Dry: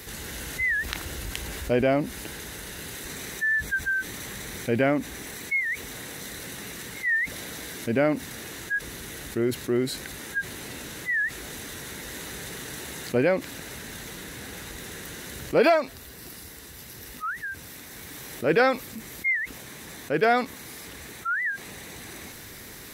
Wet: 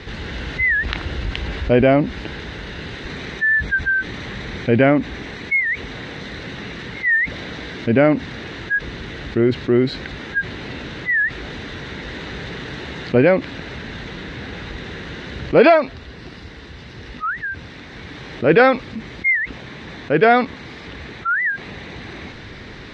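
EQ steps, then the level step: low-pass 4 kHz 24 dB/octave; bass shelf 220 Hz +4.5 dB; +7.5 dB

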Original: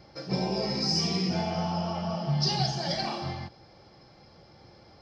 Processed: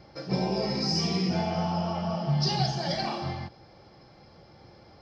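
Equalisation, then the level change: treble shelf 5.2 kHz -6.5 dB; +1.5 dB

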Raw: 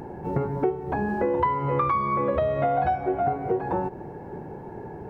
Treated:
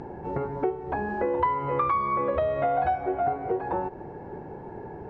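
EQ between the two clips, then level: distance through air 92 m; dynamic bell 160 Hz, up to -8 dB, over -42 dBFS, Q 0.77; 0.0 dB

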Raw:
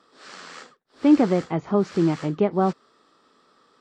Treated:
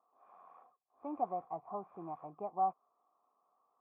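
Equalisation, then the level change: cascade formant filter a; -2.5 dB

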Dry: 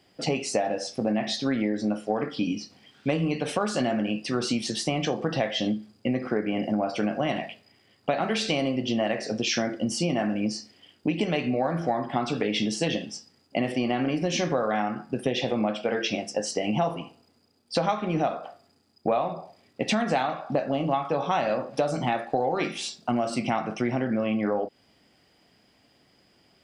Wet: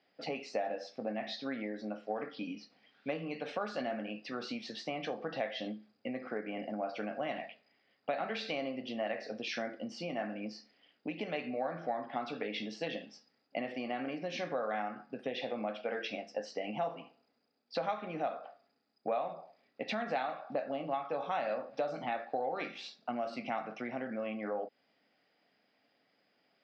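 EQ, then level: cabinet simulation 300–4200 Hz, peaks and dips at 360 Hz -8 dB, 990 Hz -5 dB, 3.1 kHz -6 dB; -7.5 dB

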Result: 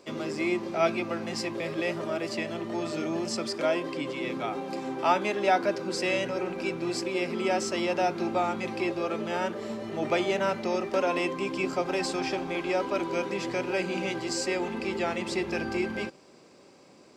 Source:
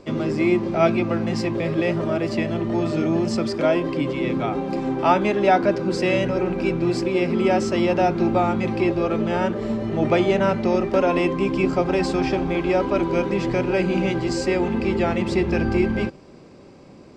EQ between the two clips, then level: high-pass 450 Hz 6 dB/octave; treble shelf 6 kHz +11.5 dB; -5.0 dB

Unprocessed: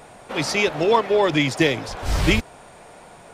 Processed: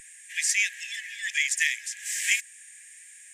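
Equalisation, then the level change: brick-wall FIR high-pass 1.6 kHz; tilt EQ -4 dB/octave; resonant high shelf 5.7 kHz +10.5 dB, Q 3; +5.5 dB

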